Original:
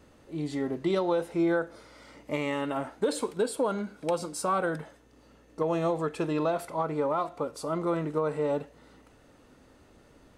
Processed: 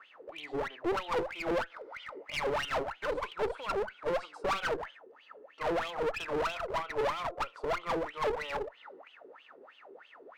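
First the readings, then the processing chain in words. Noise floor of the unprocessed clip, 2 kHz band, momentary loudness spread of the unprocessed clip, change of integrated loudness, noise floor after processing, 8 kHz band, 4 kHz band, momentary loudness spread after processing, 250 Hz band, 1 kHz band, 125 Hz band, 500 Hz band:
-59 dBFS, +2.0 dB, 8 LU, -4.0 dB, -59 dBFS, -10.0 dB, +2.5 dB, 21 LU, -11.0 dB, -1.5 dB, -11.5 dB, -4.5 dB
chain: wah-wah 3.1 Hz 380–3200 Hz, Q 14; overdrive pedal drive 25 dB, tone 2.3 kHz, clips at -24 dBFS; one-sided clip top -44.5 dBFS; trim +6 dB

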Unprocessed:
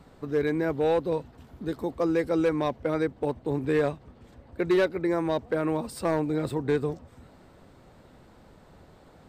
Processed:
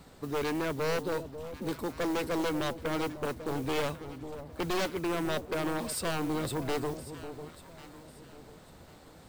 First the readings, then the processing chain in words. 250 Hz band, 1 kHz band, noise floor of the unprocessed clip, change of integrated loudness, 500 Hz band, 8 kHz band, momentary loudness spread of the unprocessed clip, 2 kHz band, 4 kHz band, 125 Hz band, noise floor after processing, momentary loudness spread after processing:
-5.5 dB, -2.0 dB, -55 dBFS, -6.0 dB, -7.0 dB, +8.0 dB, 8 LU, -1.5 dB, +5.0 dB, -4.5 dB, -54 dBFS, 19 LU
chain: one-sided wavefolder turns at -24 dBFS; treble shelf 3.1 kHz +10.5 dB; modulation noise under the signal 21 dB; saturation -24 dBFS, distortion -13 dB; echo whose repeats swap between lows and highs 547 ms, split 870 Hz, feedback 54%, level -10 dB; trim -1.5 dB

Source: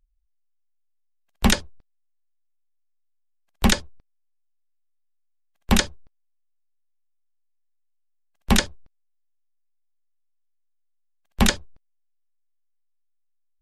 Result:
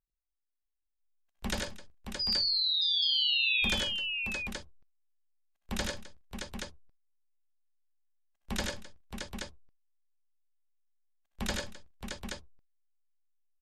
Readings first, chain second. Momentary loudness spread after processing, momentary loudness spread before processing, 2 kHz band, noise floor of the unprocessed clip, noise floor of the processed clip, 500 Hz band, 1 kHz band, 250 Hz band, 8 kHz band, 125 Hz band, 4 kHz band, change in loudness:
21 LU, 10 LU, -3.5 dB, -69 dBFS, -84 dBFS, -9.0 dB, -13.0 dB, -15.0 dB, -12.5 dB, -14.5 dB, +1.5 dB, -7.0 dB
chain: painted sound fall, 2.19–3.65 s, 2.4–5 kHz -10 dBFS; reverse; compression 6:1, threshold -24 dBFS, peak gain reduction 13.5 dB; reverse; multi-tap echo 79/98/141/260/621/826 ms -6/-3.5/-16/-17.5/-6/-5.5 dB; spectral noise reduction 15 dB; trim -8 dB

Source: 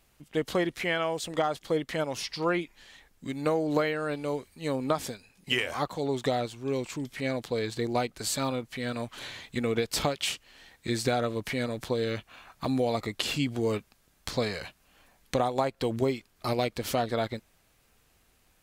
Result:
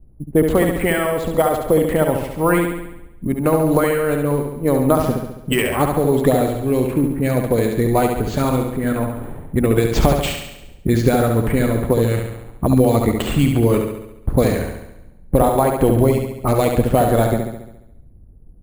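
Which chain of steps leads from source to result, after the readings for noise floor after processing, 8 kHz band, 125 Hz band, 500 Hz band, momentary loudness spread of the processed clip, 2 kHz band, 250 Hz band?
-43 dBFS, +7.5 dB, +17.0 dB, +12.5 dB, 9 LU, +7.5 dB, +14.0 dB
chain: level-controlled noise filter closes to 340 Hz, open at -23 dBFS; harmonic-percussive split harmonic -8 dB; tilt EQ -3.5 dB/octave; in parallel at +2.5 dB: peak limiter -20 dBFS, peak gain reduction 11 dB; on the sum: sample-rate reducer 11 kHz, jitter 0%; on a send: flutter echo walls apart 11.9 m, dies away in 0.86 s; on the sum: trim +5 dB

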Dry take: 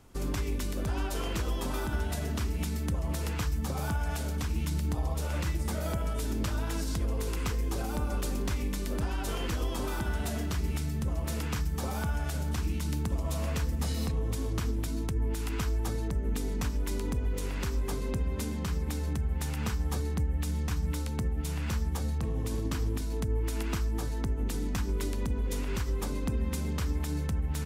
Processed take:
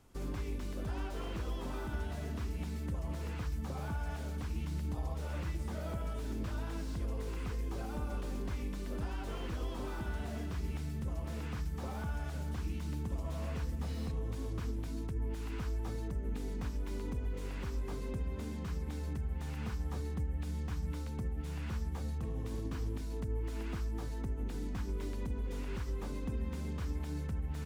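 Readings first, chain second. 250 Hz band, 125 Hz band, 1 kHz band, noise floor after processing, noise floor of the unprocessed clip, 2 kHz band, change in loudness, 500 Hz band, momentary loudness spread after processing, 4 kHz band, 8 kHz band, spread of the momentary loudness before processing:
-6.5 dB, -6.5 dB, -7.5 dB, -40 dBFS, -34 dBFS, -8.0 dB, -7.0 dB, -6.5 dB, 2 LU, -11.0 dB, -14.5 dB, 1 LU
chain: slew-rate limiter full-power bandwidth 21 Hz; trim -6.5 dB

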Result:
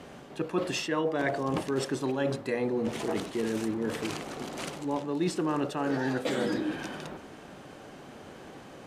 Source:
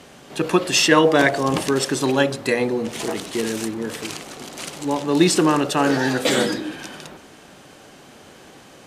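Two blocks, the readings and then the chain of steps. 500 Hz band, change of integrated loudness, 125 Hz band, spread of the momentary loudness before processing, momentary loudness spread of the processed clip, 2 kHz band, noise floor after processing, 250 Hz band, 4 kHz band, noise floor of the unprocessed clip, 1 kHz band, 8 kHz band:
-10.0 dB, -11.5 dB, -9.0 dB, 17 LU, 18 LU, -13.5 dB, -48 dBFS, -9.5 dB, -15.0 dB, -46 dBFS, -11.5 dB, -16.5 dB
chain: treble shelf 2.5 kHz -10.5 dB; reverse; compression 5:1, threshold -27 dBFS, peak gain reduction 15.5 dB; reverse

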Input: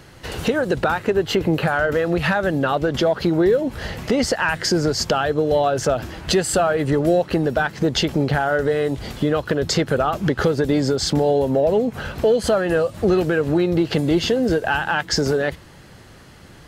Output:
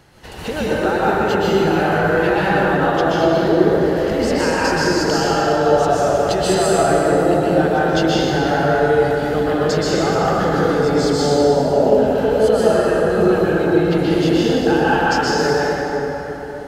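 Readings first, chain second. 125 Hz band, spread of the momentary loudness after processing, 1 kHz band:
+1.5 dB, 3 LU, +6.5 dB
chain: peaking EQ 820 Hz +5.5 dB 0.49 oct; plate-style reverb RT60 4.1 s, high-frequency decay 0.5×, pre-delay 110 ms, DRR -8.5 dB; trim -6.5 dB

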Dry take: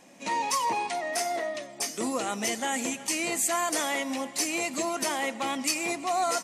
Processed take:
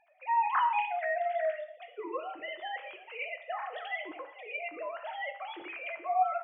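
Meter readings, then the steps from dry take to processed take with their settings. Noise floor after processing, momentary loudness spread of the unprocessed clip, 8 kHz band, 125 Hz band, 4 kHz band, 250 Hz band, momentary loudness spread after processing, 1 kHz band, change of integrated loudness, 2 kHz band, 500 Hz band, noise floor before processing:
-55 dBFS, 5 LU, under -40 dB, under -30 dB, -14.5 dB, -19.0 dB, 13 LU, -1.5 dB, -5.5 dB, -4.5 dB, -4.0 dB, -45 dBFS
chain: formants replaced by sine waves; peaking EQ 190 Hz -5.5 dB 0.28 oct; gated-style reverb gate 220 ms falling, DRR 6 dB; trim -5 dB

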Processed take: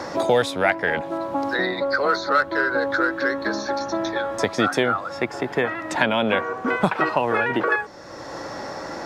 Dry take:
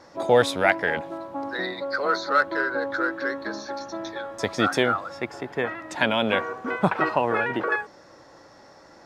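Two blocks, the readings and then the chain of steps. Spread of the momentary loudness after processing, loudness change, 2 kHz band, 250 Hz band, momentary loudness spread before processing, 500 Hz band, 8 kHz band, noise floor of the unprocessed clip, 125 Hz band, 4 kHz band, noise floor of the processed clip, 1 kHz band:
9 LU, +2.5 dB, +3.0 dB, +3.5 dB, 12 LU, +2.5 dB, +3.0 dB, -51 dBFS, +1.5 dB, +1.5 dB, -36 dBFS, +2.5 dB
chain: three bands compressed up and down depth 70%; trim +2.5 dB

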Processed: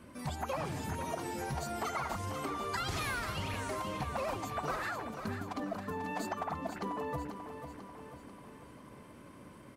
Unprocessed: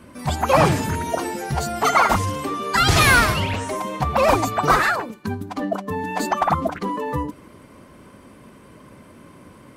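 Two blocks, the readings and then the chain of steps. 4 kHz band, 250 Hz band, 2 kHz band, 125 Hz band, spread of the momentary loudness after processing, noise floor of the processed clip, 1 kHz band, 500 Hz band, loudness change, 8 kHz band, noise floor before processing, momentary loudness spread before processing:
-18.0 dB, -14.5 dB, -19.0 dB, -16.5 dB, 17 LU, -53 dBFS, -17.0 dB, -16.5 dB, -17.5 dB, -17.0 dB, -47 dBFS, 12 LU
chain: compression 6:1, threshold -26 dBFS, peak gain reduction 14.5 dB; feedback delay 491 ms, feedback 53%, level -9 dB; trim -8.5 dB

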